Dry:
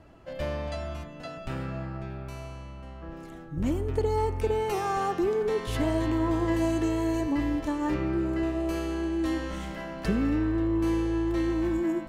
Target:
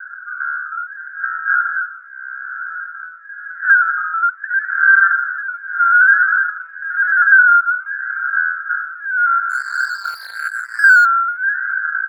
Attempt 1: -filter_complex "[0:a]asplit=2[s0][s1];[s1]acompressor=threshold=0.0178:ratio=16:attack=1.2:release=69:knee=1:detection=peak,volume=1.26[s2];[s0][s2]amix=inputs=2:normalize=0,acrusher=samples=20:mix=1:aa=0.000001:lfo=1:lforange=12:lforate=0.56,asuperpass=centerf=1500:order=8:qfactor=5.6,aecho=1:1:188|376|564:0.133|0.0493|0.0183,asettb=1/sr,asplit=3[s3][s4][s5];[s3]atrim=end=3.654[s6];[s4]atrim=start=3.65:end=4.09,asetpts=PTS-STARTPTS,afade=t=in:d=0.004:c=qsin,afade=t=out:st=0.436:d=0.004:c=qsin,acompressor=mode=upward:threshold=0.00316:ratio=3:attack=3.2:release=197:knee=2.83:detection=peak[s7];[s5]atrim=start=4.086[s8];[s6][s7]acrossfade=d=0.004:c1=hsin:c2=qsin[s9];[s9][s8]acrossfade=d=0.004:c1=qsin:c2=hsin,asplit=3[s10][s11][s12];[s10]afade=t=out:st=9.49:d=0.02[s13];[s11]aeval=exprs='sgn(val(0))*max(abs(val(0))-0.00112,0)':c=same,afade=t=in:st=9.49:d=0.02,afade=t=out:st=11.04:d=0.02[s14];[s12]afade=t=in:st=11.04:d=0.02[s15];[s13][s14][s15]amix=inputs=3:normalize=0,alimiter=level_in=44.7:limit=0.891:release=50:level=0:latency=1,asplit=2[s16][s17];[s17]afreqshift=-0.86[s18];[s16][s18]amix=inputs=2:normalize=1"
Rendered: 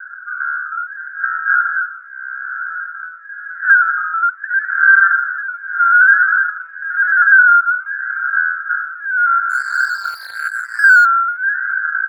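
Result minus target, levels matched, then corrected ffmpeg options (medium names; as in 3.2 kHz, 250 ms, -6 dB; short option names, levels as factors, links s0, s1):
compression: peak gain reduction -6.5 dB
-filter_complex "[0:a]asplit=2[s0][s1];[s1]acompressor=threshold=0.00794:ratio=16:attack=1.2:release=69:knee=1:detection=peak,volume=1.26[s2];[s0][s2]amix=inputs=2:normalize=0,acrusher=samples=20:mix=1:aa=0.000001:lfo=1:lforange=12:lforate=0.56,asuperpass=centerf=1500:order=8:qfactor=5.6,aecho=1:1:188|376|564:0.133|0.0493|0.0183,asettb=1/sr,asplit=3[s3][s4][s5];[s3]atrim=end=3.654[s6];[s4]atrim=start=3.65:end=4.09,asetpts=PTS-STARTPTS,afade=t=in:d=0.004:c=qsin,afade=t=out:st=0.436:d=0.004:c=qsin,acompressor=mode=upward:threshold=0.00316:ratio=3:attack=3.2:release=197:knee=2.83:detection=peak[s7];[s5]atrim=start=4.086[s8];[s6][s7]acrossfade=d=0.004:c1=hsin:c2=qsin[s9];[s9][s8]acrossfade=d=0.004:c1=qsin:c2=hsin,asplit=3[s10][s11][s12];[s10]afade=t=out:st=9.49:d=0.02[s13];[s11]aeval=exprs='sgn(val(0))*max(abs(val(0))-0.00112,0)':c=same,afade=t=in:st=9.49:d=0.02,afade=t=out:st=11.04:d=0.02[s14];[s12]afade=t=in:st=11.04:d=0.02[s15];[s13][s14][s15]amix=inputs=3:normalize=0,alimiter=level_in=44.7:limit=0.891:release=50:level=0:latency=1,asplit=2[s16][s17];[s17]afreqshift=-0.86[s18];[s16][s18]amix=inputs=2:normalize=1"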